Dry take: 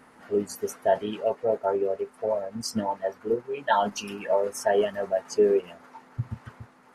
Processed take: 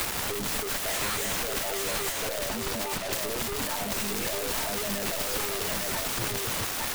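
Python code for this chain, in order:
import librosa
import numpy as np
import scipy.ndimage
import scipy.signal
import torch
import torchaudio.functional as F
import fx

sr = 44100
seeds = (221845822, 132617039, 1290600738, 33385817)

y = fx.tracing_dist(x, sr, depth_ms=0.067)
y = fx.over_compress(y, sr, threshold_db=-27.0, ratio=-0.5)
y = fx.env_lowpass_down(y, sr, base_hz=1500.0, full_db=-23.0)
y = fx.fuzz(y, sr, gain_db=43.0, gate_db=-52.0)
y = fx.highpass(y, sr, hz=370.0, slope=12, at=(0.91, 1.43))
y = fx.leveller(y, sr, passes=3)
y = (np.mod(10.0 ** (21.0 / 20.0) * y + 1.0, 2.0) - 1.0) / 10.0 ** (21.0 / 20.0)
y = fx.lowpass(y, sr, hz=2300.0, slope=6, at=(2.12, 3.13))
y = y + 10.0 ** (-3.5 / 20.0) * np.pad(y, (int(854 * sr / 1000.0), 0))[:len(y)]
y = fx.band_squash(y, sr, depth_pct=100)
y = y * 10.0 ** (-3.5 / 20.0)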